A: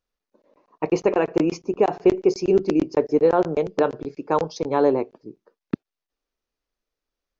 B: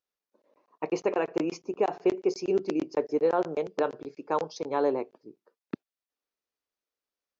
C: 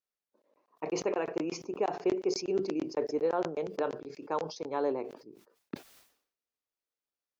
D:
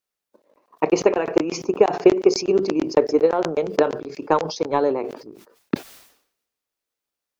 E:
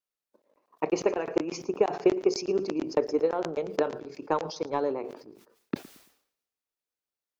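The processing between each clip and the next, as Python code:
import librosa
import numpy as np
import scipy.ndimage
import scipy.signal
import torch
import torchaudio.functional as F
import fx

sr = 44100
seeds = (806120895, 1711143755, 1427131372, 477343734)

y1 = fx.highpass(x, sr, hz=330.0, slope=6)
y1 = y1 * librosa.db_to_amplitude(-5.5)
y2 = fx.sustainer(y1, sr, db_per_s=100.0)
y2 = y2 * librosa.db_to_amplitude(-5.0)
y3 = fx.transient(y2, sr, attack_db=10, sustain_db=6)
y3 = y3 * librosa.db_to_amplitude(7.5)
y4 = fx.echo_feedback(y3, sr, ms=112, feedback_pct=33, wet_db=-20.5)
y4 = y4 * librosa.db_to_amplitude(-8.5)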